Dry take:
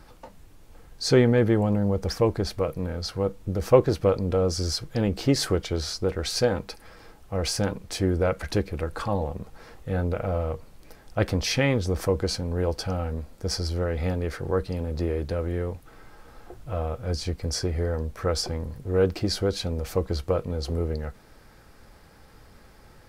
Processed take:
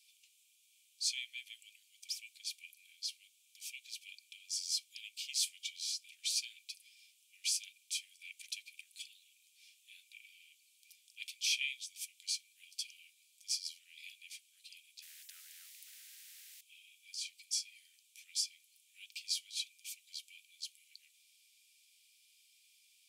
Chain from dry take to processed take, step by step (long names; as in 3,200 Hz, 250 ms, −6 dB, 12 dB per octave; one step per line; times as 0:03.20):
Chebyshev high-pass with heavy ripple 2,300 Hz, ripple 6 dB
0:15.02–0:16.61: every bin compressed towards the loudest bin 10 to 1
level −1 dB